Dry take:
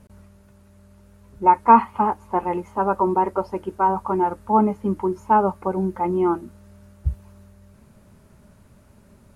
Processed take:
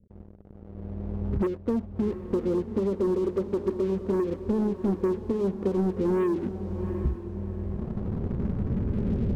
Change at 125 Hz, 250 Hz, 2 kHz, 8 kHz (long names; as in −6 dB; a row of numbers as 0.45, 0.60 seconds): +3.0 dB, −1.0 dB, −12.0 dB, can't be measured